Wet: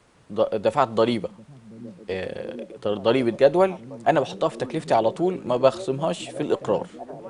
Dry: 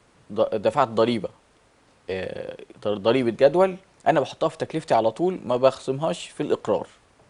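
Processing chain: delay with a stepping band-pass 0.731 s, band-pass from 160 Hz, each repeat 0.7 oct, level -10 dB

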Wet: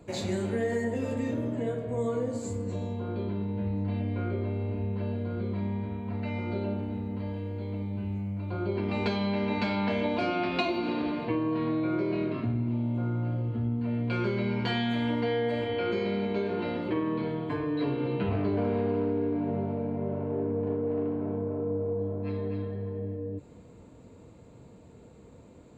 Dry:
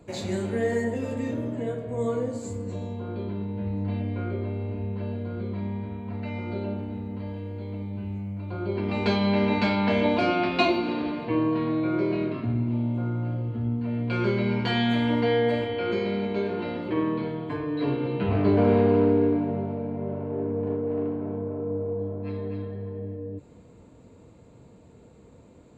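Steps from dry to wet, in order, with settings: compressor, threshold -25 dBFS, peak gain reduction 9 dB

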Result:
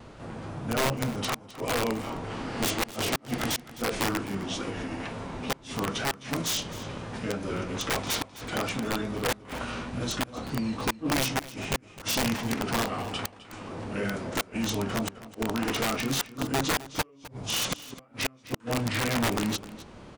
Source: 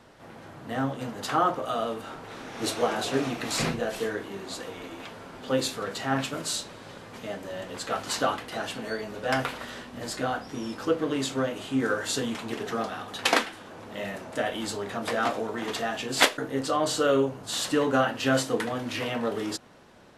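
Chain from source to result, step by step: low shelf 150 Hz +9.5 dB; in parallel at -2 dB: compressor 20:1, threshold -36 dBFS, peak gain reduction 23.5 dB; on the sum: formant shift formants -4 st; flipped gate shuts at -14 dBFS, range -35 dB; wow and flutter 35 cents; wrapped overs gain 20 dB; on a send: echo 0.259 s -16.5 dB

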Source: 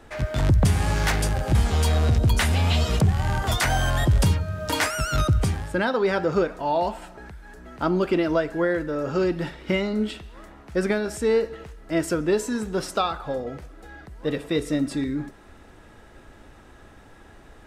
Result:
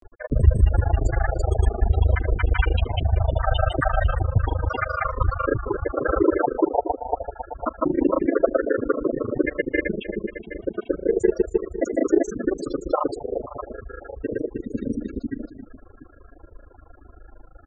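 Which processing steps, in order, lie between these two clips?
harmoniser -4 st -3 dB, -3 st 0 dB; bell 160 Hz -15 dB 0.84 oct; on a send: echo 0.547 s -11.5 dB; on the sum: loudest bins only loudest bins 16; grains 44 ms, grains 26/s, spray 0.307 s, pitch spread up and down by 0 st; gain +3.5 dB

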